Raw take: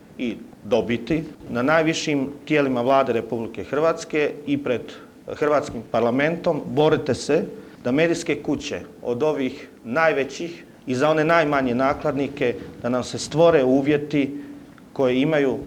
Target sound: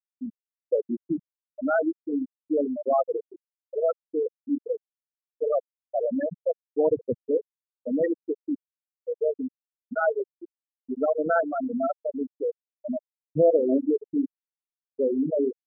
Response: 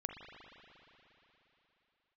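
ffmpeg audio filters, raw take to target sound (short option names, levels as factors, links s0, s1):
-filter_complex "[0:a]asplit=2[s0][s1];[1:a]atrim=start_sample=2205,afade=t=out:st=0.27:d=0.01,atrim=end_sample=12348[s2];[s1][s2]afir=irnorm=-1:irlink=0,volume=0.2[s3];[s0][s3]amix=inputs=2:normalize=0,afftfilt=real='re*gte(hypot(re,im),0.708)':imag='im*gte(hypot(re,im),0.708)':win_size=1024:overlap=0.75,volume=0.596"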